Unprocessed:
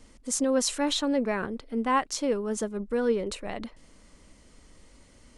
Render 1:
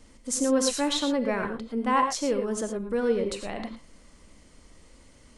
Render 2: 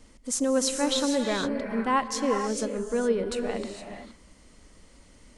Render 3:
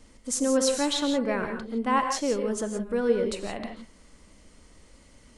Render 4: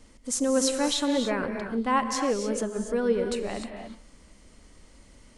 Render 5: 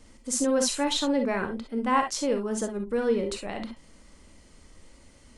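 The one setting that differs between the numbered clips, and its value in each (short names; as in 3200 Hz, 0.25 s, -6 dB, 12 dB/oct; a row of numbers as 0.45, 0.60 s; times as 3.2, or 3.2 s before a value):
non-linear reverb, gate: 130, 490, 190, 320, 80 ms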